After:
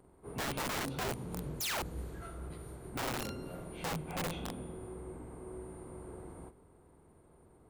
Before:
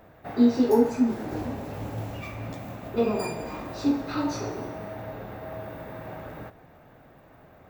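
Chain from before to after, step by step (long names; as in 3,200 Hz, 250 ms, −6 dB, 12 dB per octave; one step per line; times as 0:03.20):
phase-vocoder pitch shift without resampling −9.5 semitones
sound drawn into the spectrogram fall, 0:01.60–0:01.83, 300–7,600 Hz −28 dBFS
wrap-around overflow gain 24 dB
level −7 dB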